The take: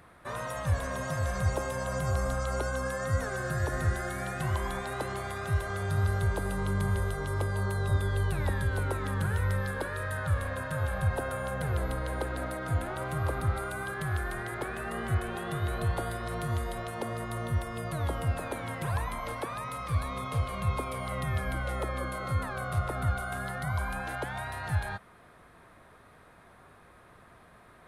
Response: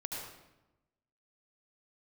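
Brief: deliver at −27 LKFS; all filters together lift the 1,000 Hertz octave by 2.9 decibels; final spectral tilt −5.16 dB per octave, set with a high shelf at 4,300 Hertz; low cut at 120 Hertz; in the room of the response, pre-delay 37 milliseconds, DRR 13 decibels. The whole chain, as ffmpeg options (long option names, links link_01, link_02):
-filter_complex "[0:a]highpass=120,equalizer=frequency=1000:width_type=o:gain=4,highshelf=frequency=4300:gain=-5,asplit=2[link_01][link_02];[1:a]atrim=start_sample=2205,adelay=37[link_03];[link_02][link_03]afir=irnorm=-1:irlink=0,volume=-14dB[link_04];[link_01][link_04]amix=inputs=2:normalize=0,volume=6.5dB"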